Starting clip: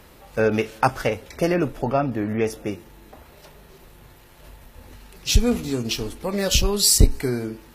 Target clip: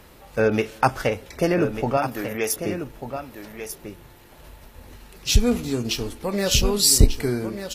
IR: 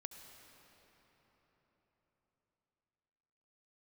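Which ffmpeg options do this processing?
-filter_complex "[0:a]asettb=1/sr,asplit=3[a][b][c];[a]atrim=end=1.974[d];[b]atrim=start=1.97:end=2.56,asetpts=PTS-STARTPTS,afade=t=in:d=0.004:c=qsin,afade=t=out:st=0.586:d=0.004:c=qsin,aemphasis=mode=production:type=riaa[e];[c]atrim=start=2.556[f];[d][e]acrossfade=d=0.004:c1=hsin:c2=qsin[g];[g][f]acrossfade=d=0.004:c1=qsin:c2=hsin,asplit=2[h][i];[i]aecho=0:1:1193:0.335[j];[h][j]amix=inputs=2:normalize=0"

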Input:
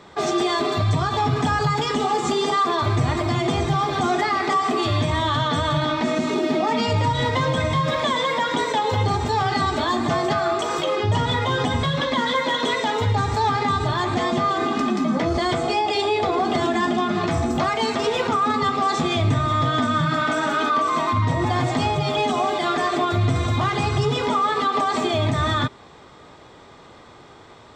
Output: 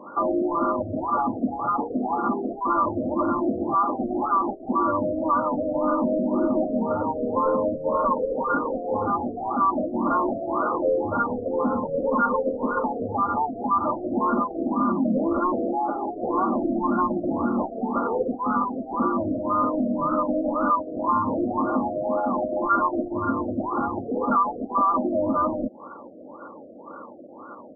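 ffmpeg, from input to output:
-filter_complex "[0:a]aecho=1:1:3.6:0.99,acompressor=threshold=-23dB:ratio=2,highpass=280,equalizer=f=420:t=q:w=4:g=-5,equalizer=f=810:t=q:w=4:g=-10,equalizer=f=1.4k:t=q:w=4:g=8,lowpass=f=2.5k:w=0.5412,lowpass=f=2.5k:w=1.3066,asoftclip=type=tanh:threshold=-21.5dB,asplit=2[a][b];[b]asetrate=37084,aresample=44100,atempo=1.18921,volume=-7dB[c];[a][c]amix=inputs=2:normalize=0,afftfilt=real='re*lt(b*sr/1024,710*pow(1500/710,0.5+0.5*sin(2*PI*1.9*pts/sr)))':imag='im*lt(b*sr/1024,710*pow(1500/710,0.5+0.5*sin(2*PI*1.9*pts/sr)))':win_size=1024:overlap=0.75,volume=5.5dB"

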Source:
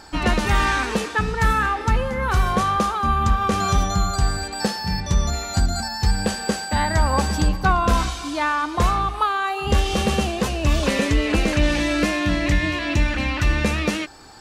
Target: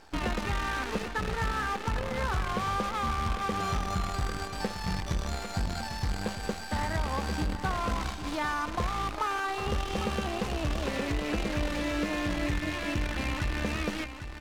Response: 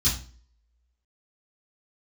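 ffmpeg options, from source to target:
-filter_complex "[0:a]acompressor=threshold=-20dB:ratio=10,acrusher=bits=5:dc=4:mix=0:aa=0.000001,aemphasis=mode=reproduction:type=50fm,asplit=2[a][b];[b]aecho=0:1:800:0.316[c];[a][c]amix=inputs=2:normalize=0,volume=-7dB"

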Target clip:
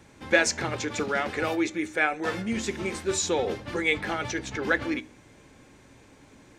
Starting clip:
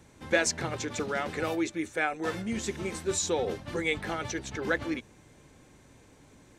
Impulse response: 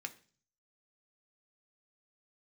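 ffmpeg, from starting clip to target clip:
-filter_complex "[0:a]asplit=2[a][b];[1:a]atrim=start_sample=2205,lowpass=8.4k[c];[b][c]afir=irnorm=-1:irlink=0,volume=-0.5dB[d];[a][d]amix=inputs=2:normalize=0"

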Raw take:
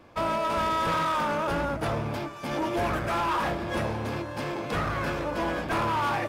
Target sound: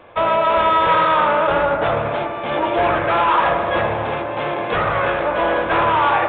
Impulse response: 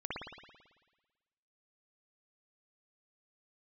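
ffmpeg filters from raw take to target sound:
-filter_complex "[0:a]lowshelf=f=370:t=q:w=1.5:g=-7,asplit=2[a][b];[1:a]atrim=start_sample=2205,asetrate=29988,aresample=44100[c];[b][c]afir=irnorm=-1:irlink=0,volume=-8.5dB[d];[a][d]amix=inputs=2:normalize=0,volume=7.5dB" -ar 8000 -c:a pcm_mulaw

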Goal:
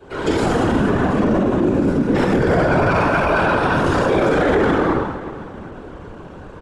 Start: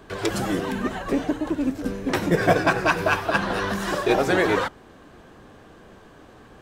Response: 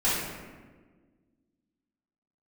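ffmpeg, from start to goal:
-filter_complex "[0:a]highshelf=f=2.7k:g=-7.5[a];[1:a]atrim=start_sample=2205,afade=t=out:st=0.33:d=0.01,atrim=end_sample=14994,asetrate=24696,aresample=44100[b];[a][b]afir=irnorm=-1:irlink=0,afftfilt=real='hypot(re,im)*cos(2*PI*random(0))':imag='hypot(re,im)*sin(2*PI*random(1))':win_size=512:overlap=0.75,alimiter=limit=-8.5dB:level=0:latency=1:release=22,asplit=2[c][d];[d]adelay=365,lowpass=f=4.9k:p=1,volume=-14dB,asplit=2[e][f];[f]adelay=365,lowpass=f=4.9k:p=1,volume=0.43,asplit=2[g][h];[h]adelay=365,lowpass=f=4.9k:p=1,volume=0.43,asplit=2[i][j];[j]adelay=365,lowpass=f=4.9k:p=1,volume=0.43[k];[c][e][g][i][k]amix=inputs=5:normalize=0,asetrate=41625,aresample=44100,atempo=1.05946"

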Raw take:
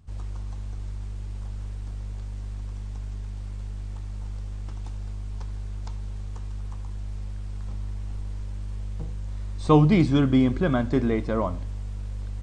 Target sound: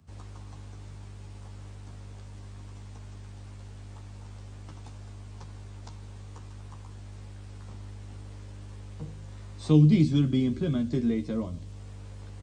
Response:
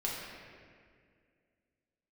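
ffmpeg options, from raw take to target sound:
-filter_complex "[0:a]highpass=90,acrossover=split=150|370|2700[a][b][c][d];[c]acompressor=threshold=-46dB:ratio=6[e];[a][b][e][d]amix=inputs=4:normalize=0,asplit=2[f][g];[g]adelay=13,volume=-5dB[h];[f][h]amix=inputs=2:normalize=0,volume=-2.5dB"

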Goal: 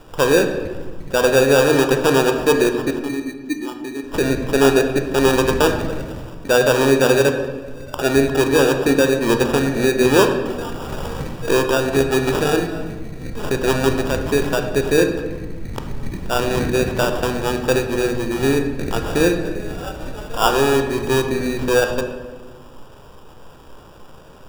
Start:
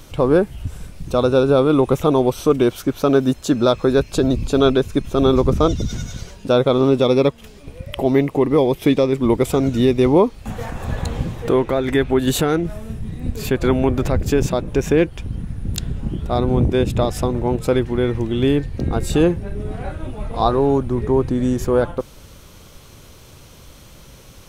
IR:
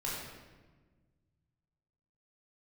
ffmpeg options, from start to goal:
-filter_complex "[0:a]asettb=1/sr,asplit=3[a][b][c];[a]atrim=end=2.994[d];[b]atrim=start=2.99:end=4.04,asetpts=PTS-STARTPTS,afade=t=in:d=0.004:c=qsin,afade=t=out:st=1.046:d=0.004:c=qsin,asplit=3[e][f][g];[e]bandpass=f=300:t=q:w=8,volume=0dB[h];[f]bandpass=f=870:t=q:w=8,volume=-6dB[i];[g]bandpass=f=2.24k:t=q:w=8,volume=-9dB[j];[h][i][j]amix=inputs=3:normalize=0[k];[c]atrim=start=4.036[l];[d][k]acrossfade=d=0.004:c1=hsin:c2=qsin[m];[m][l]acrossfade=d=0.004:c1=qsin:c2=hsin,equalizer=f=66:w=0.4:g=-13,acrusher=samples=21:mix=1:aa=0.000001,asplit=2[n][o];[1:a]atrim=start_sample=2205,highshelf=f=7.8k:g=-10[p];[o][p]afir=irnorm=-1:irlink=0,volume=-5dB[q];[n][q]amix=inputs=2:normalize=0,volume=-1dB"

